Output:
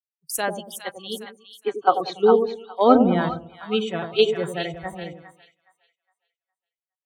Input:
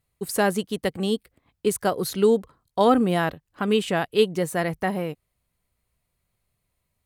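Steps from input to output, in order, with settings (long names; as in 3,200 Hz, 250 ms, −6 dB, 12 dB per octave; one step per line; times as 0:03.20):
noise reduction from a noise print of the clip's start 25 dB
0:00.64–0:02.38: loudspeaker in its box 230–4,500 Hz, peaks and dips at 810 Hz +10 dB, 1,200 Hz +9 dB, 2,300 Hz +3 dB, 3,900 Hz +4 dB
echo with a time of its own for lows and highs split 780 Hz, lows 96 ms, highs 412 ms, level −5 dB
multiband upward and downward expander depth 100%
level −2.5 dB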